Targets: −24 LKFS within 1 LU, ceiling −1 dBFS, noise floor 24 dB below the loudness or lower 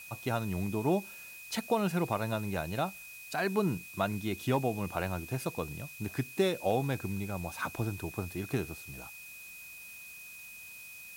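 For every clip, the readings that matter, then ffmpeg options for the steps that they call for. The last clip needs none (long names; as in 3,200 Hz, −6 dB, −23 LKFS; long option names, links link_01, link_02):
interfering tone 2,500 Hz; level of the tone −47 dBFS; background noise floor −48 dBFS; target noise floor −58 dBFS; integrated loudness −34.0 LKFS; sample peak −17.0 dBFS; target loudness −24.0 LKFS
→ -af "bandreject=frequency=2500:width=30"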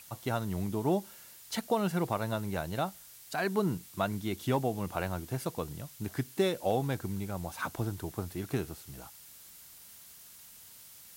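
interfering tone none found; background noise floor −53 dBFS; target noise floor −58 dBFS
→ -af "afftdn=noise_reduction=6:noise_floor=-53"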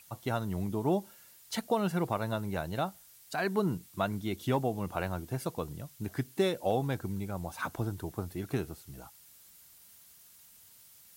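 background noise floor −58 dBFS; integrated loudness −34.0 LKFS; sample peak −17.5 dBFS; target loudness −24.0 LKFS
→ -af "volume=10dB"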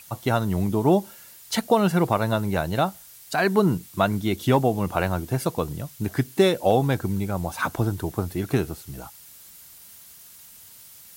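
integrated loudness −24.0 LKFS; sample peak −7.5 dBFS; background noise floor −48 dBFS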